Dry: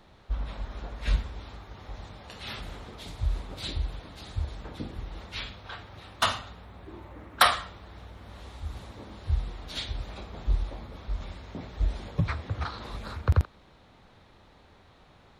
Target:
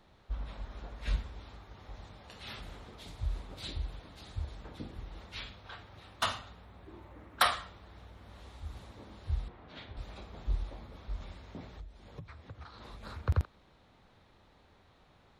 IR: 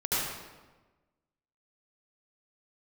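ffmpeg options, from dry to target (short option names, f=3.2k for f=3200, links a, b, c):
-filter_complex "[0:a]asettb=1/sr,asplit=3[a][b][c];[a]atrim=end=9.484[d];[b]atrim=start=9.48:end=9.97,asetpts=PTS-STARTPTS,afade=t=in:d=0.004:c=qsin,afade=t=out:st=0.486:d=0.004:c=qsin,highpass=100,lowpass=2k[e];[c]atrim=start=9.966[f];[d][e]acrossfade=d=0.004:c1=hsin:c2=qsin[g];[g][f]acrossfade=d=0.004:c1=qsin:c2=hsin,asettb=1/sr,asplit=3[h][i][j];[h]atrim=end=11.714[k];[i]atrim=start=11.71:end=13.03,asetpts=PTS-STARTPTS,afade=t=in:d=0.004:c=qsin,afade=t=out:st=1.316:d=0.004:c=qsin,acompressor=threshold=-38dB:ratio=8[l];[j]atrim=start=13.026[m];[k][l]acrossfade=d=0.004:c1=hsin:c2=qsin[n];[n][m]acrossfade=d=0.004:c1=qsin:c2=hsin,volume=-6.5dB"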